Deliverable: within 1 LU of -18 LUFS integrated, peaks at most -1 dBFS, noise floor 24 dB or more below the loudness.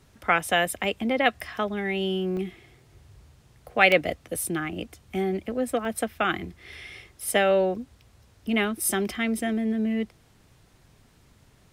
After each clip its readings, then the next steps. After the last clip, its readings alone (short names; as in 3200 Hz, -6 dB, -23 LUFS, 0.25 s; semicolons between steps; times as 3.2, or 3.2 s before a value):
dropouts 3; longest dropout 1.4 ms; loudness -26.0 LUFS; peak -4.0 dBFS; loudness target -18.0 LUFS
-> interpolate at 2.37/3.92/5.85, 1.4 ms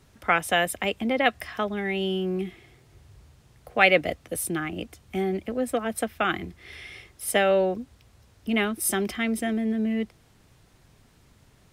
dropouts 0; loudness -26.0 LUFS; peak -4.0 dBFS; loudness target -18.0 LUFS
-> gain +8 dB; limiter -1 dBFS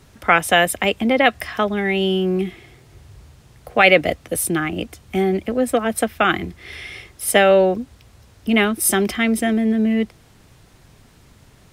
loudness -18.5 LUFS; peak -1.0 dBFS; noise floor -51 dBFS